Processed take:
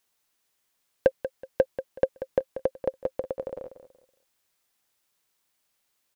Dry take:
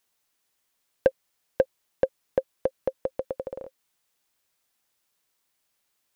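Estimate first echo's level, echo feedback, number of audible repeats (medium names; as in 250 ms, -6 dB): -12.0 dB, 27%, 3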